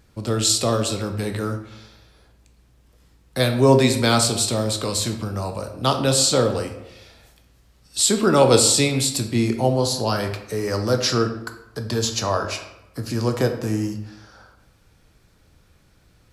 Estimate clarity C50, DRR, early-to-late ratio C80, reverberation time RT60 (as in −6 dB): 9.0 dB, 5.5 dB, 11.5 dB, 0.95 s